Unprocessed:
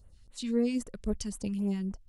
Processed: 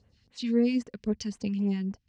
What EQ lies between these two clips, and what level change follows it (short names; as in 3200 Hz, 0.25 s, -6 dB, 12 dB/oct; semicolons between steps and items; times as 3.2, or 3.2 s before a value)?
speaker cabinet 140–5200 Hz, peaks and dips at 170 Hz -4 dB, 340 Hz -7 dB, 590 Hz -8 dB, 900 Hz -5 dB, 1300 Hz -8 dB, 3600 Hz -5 dB; +6.0 dB